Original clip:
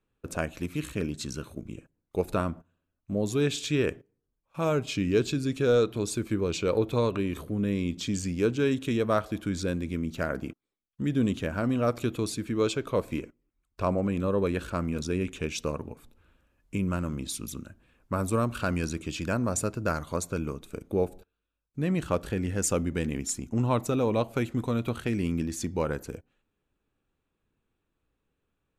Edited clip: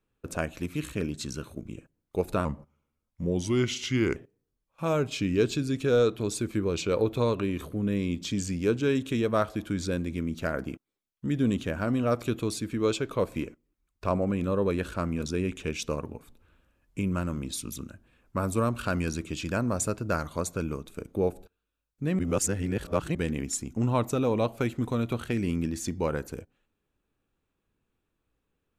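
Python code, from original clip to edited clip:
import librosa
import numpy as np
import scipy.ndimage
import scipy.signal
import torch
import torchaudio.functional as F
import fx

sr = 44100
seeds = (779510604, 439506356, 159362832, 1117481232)

y = fx.edit(x, sr, fx.speed_span(start_s=2.45, length_s=1.47, speed=0.86),
    fx.reverse_span(start_s=21.95, length_s=0.96), tone=tone)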